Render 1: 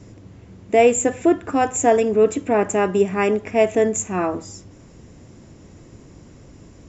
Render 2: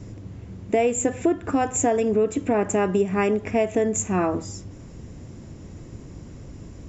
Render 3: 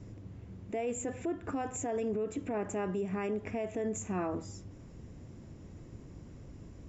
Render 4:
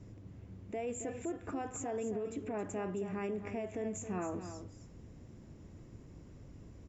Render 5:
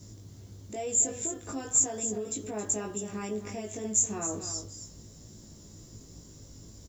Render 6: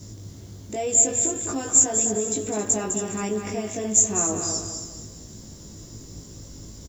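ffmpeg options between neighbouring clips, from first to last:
ffmpeg -i in.wav -af "lowshelf=frequency=210:gain=7,acompressor=threshold=-18dB:ratio=4" out.wav
ffmpeg -i in.wav -af "alimiter=limit=-17.5dB:level=0:latency=1:release=18,highshelf=frequency=5400:gain=-6,volume=-9dB" out.wav
ffmpeg -i in.wav -af "aecho=1:1:270:0.316,volume=-4dB" out.wav
ffmpeg -i in.wav -filter_complex "[0:a]asplit=2[link_01][link_02];[link_02]adelay=19,volume=-2dB[link_03];[link_01][link_03]amix=inputs=2:normalize=0,aexciter=amount=6.3:drive=7:freq=3600" out.wav
ffmpeg -i in.wav -af "aecho=1:1:204|408|612|816:0.422|0.143|0.0487|0.0166,volume=7.5dB" out.wav

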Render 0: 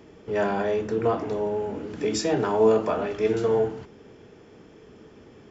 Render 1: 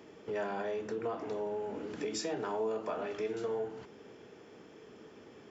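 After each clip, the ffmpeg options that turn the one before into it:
ffmpeg -i in.wav -af "acompressor=threshold=-32dB:ratio=3,highpass=frequency=280:poles=1,volume=-2dB" out.wav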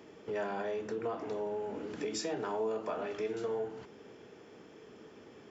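ffmpeg -i in.wav -af anull out.wav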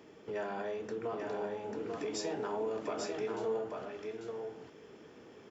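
ffmpeg -i in.wav -af "flanger=delay=6.4:depth=6.1:regen=-89:speed=1.1:shape=triangular,aecho=1:1:843:0.631,volume=2.5dB" out.wav

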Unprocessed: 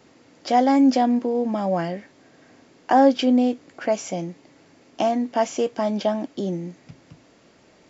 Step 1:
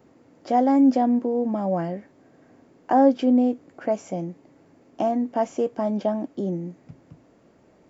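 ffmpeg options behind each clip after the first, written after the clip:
ffmpeg -i in.wav -af "equalizer=frequency=4200:width=0.43:gain=-14" out.wav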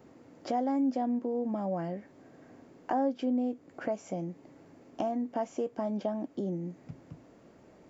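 ffmpeg -i in.wav -af "acompressor=threshold=-36dB:ratio=2" out.wav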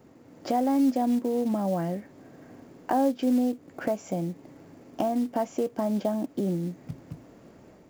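ffmpeg -i in.wav -af "dynaudnorm=framelen=220:gausssize=3:maxgain=4.5dB,acrusher=bits=6:mode=log:mix=0:aa=0.000001,bass=frequency=250:gain=3,treble=frequency=4000:gain=1" out.wav

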